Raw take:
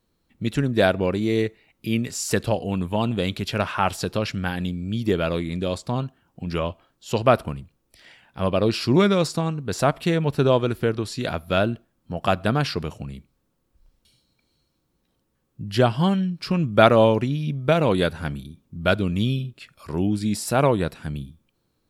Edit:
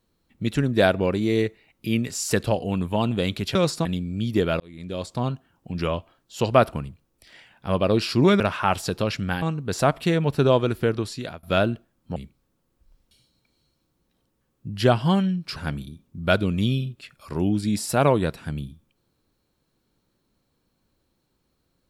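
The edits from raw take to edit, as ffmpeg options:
-filter_complex "[0:a]asplit=9[s0][s1][s2][s3][s4][s5][s6][s7][s8];[s0]atrim=end=3.552[s9];[s1]atrim=start=9.118:end=9.422[s10];[s2]atrim=start=4.568:end=5.32,asetpts=PTS-STARTPTS,afade=t=out:st=0.748:d=0.004:c=hsin[s11];[s3]atrim=start=5.32:end=9.122,asetpts=PTS-STARTPTS,afade=t=in:d=0.64[s12];[s4]atrim=start=3.548:end=4.572[s13];[s5]atrim=start=9.418:end=11.43,asetpts=PTS-STARTPTS,afade=t=out:st=1.602:d=0.41:silence=0.0891251[s14];[s6]atrim=start=11.43:end=12.162,asetpts=PTS-STARTPTS,afade=t=in:d=0.004:c=hsin:silence=0.0891251[s15];[s7]atrim=start=13.098:end=16.502[s16];[s8]atrim=start=18.138[s17];[s9][s10]acrossfade=d=0.004:c1=hsin:c2=hsin[s18];[s11][s12]concat=n=2:v=0:a=1[s19];[s18][s19]acrossfade=d=0.004:c1=hsin:c2=hsin[s20];[s20][s13]acrossfade=d=0.004:c1=hsin:c2=hsin[s21];[s14][s15]concat=n=2:v=0:a=1[s22];[s21][s22]acrossfade=d=0.004:c1=hsin:c2=hsin[s23];[s23][s16]acrossfade=d=0.004:c1=hsin:c2=hsin[s24];[s24][s17]acrossfade=d=0.004:c1=hsin:c2=hsin"

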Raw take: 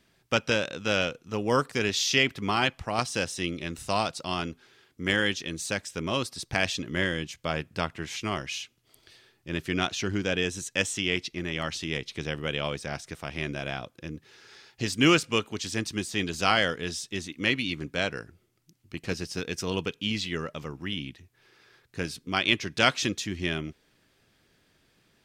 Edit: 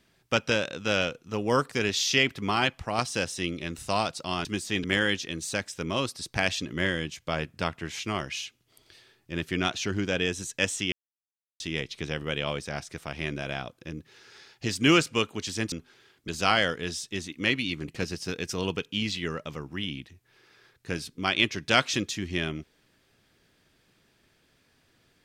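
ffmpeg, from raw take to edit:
-filter_complex "[0:a]asplit=8[s0][s1][s2][s3][s4][s5][s6][s7];[s0]atrim=end=4.452[s8];[s1]atrim=start=15.888:end=16.282[s9];[s2]atrim=start=5.008:end=11.09,asetpts=PTS-STARTPTS,afade=t=out:st=6.078:d=0.004:c=hsin[s10];[s3]atrim=start=11.09:end=11.77,asetpts=PTS-STARTPTS,volume=0[s11];[s4]atrim=start=11.77:end=15.892,asetpts=PTS-STARTPTS,afade=t=in:d=0.004:c=hsin[s12];[s5]atrim=start=4.448:end=5.012[s13];[s6]atrim=start=16.278:end=17.882[s14];[s7]atrim=start=18.968[s15];[s8][s9]acrossfade=d=0.004:c1=hsin:c2=hsin[s16];[s10][s11][s12]concat=n=3:v=0:a=1[s17];[s16][s17]acrossfade=d=0.004:c1=hsin:c2=hsin[s18];[s18][s13]acrossfade=d=0.004:c1=hsin:c2=hsin[s19];[s19][s14]acrossfade=d=0.004:c1=hsin:c2=hsin[s20];[s20][s15]acrossfade=d=0.004:c1=hsin:c2=hsin"

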